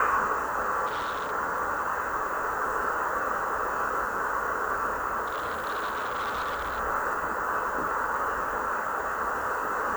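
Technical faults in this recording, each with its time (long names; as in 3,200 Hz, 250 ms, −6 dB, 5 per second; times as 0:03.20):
0:00.86–0:01.32: clipping −27.5 dBFS
0:05.26–0:06.80: clipping −27 dBFS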